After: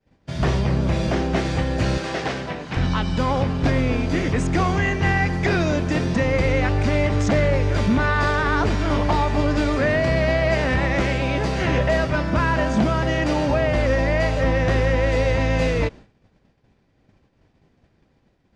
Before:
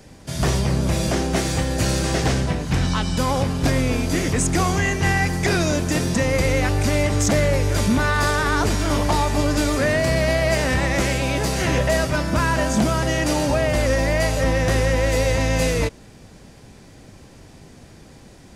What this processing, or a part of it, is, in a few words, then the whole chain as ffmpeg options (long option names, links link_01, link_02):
hearing-loss simulation: -filter_complex "[0:a]lowpass=3400,agate=range=-33dB:threshold=-33dB:ratio=3:detection=peak,asettb=1/sr,asplit=3[link_01][link_02][link_03];[link_01]atrim=end=1.984[link_04];[link_02]atrim=start=1.98:end=2.77,asetpts=PTS-STARTPTS,afade=type=in:duration=0.004:curve=qsin,afade=type=out:start_time=0.786:duration=0.004:curve=qsin,highpass=frequency=450:poles=1[link_05];[link_03]atrim=start=2.766[link_06];[link_04][link_05]acrossfade=duration=0.004:curve1=hsin:curve2=qsin[link_07];[link_07][link_06]acrossfade=duration=0.004:curve1=qsin:curve2=hsin"